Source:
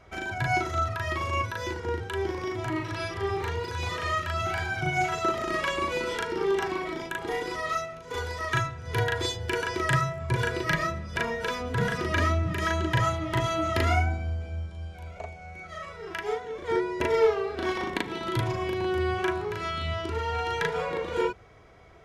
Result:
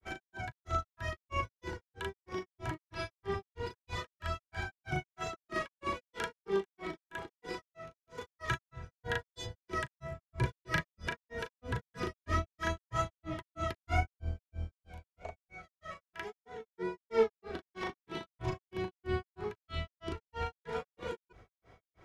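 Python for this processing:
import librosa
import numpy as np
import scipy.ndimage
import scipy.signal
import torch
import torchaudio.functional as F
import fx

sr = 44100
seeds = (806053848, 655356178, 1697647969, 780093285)

y = fx.octave_divider(x, sr, octaves=1, level_db=-6.0)
y = fx.granulator(y, sr, seeds[0], grain_ms=204.0, per_s=3.1, spray_ms=100.0, spread_st=0)
y = F.gain(torch.from_numpy(y), -4.5).numpy()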